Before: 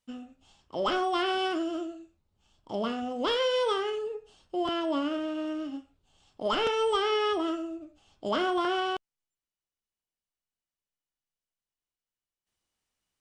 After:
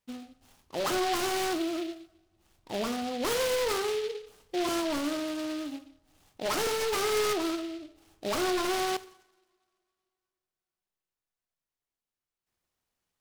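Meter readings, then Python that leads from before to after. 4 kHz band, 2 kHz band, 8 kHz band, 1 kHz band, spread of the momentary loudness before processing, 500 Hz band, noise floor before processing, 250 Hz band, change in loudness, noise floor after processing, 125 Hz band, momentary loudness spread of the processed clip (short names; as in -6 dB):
-1.0 dB, +0.5 dB, +15.0 dB, -2.5 dB, 13 LU, -1.0 dB, under -85 dBFS, -0.5 dB, -1.0 dB, under -85 dBFS, n/a, 12 LU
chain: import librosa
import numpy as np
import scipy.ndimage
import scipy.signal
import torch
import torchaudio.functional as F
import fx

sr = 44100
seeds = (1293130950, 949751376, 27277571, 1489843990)

y = 10.0 ** (-24.0 / 20.0) * (np.abs((x / 10.0 ** (-24.0 / 20.0) + 3.0) % 4.0 - 2.0) - 1.0)
y = fx.rev_double_slope(y, sr, seeds[0], early_s=0.73, late_s=2.8, knee_db=-27, drr_db=11.5)
y = fx.noise_mod_delay(y, sr, seeds[1], noise_hz=3000.0, depth_ms=0.08)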